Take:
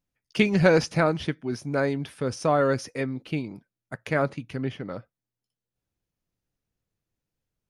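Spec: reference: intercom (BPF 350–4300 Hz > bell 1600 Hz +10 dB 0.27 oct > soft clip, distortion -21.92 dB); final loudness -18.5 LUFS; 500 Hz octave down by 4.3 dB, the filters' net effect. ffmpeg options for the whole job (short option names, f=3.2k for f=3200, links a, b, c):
-af "highpass=350,lowpass=4.3k,equalizer=f=500:t=o:g=-4,equalizer=f=1.6k:t=o:w=0.27:g=10,asoftclip=threshold=-9dB,volume=9.5dB"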